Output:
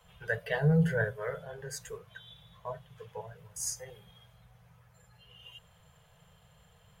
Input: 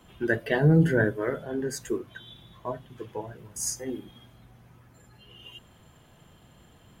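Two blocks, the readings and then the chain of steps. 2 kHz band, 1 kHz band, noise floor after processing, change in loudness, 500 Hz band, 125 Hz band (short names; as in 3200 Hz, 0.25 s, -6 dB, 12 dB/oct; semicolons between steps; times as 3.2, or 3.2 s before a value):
-4.5 dB, -5.0 dB, -63 dBFS, -5.5 dB, -7.0 dB, -5.0 dB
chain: elliptic band-stop 180–450 Hz, stop band 40 dB; gain -4.5 dB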